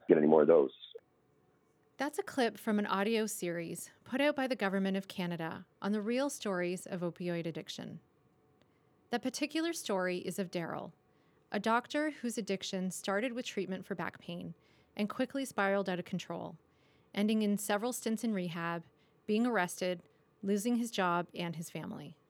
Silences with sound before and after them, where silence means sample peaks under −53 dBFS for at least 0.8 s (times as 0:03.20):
0:00.99–0:01.99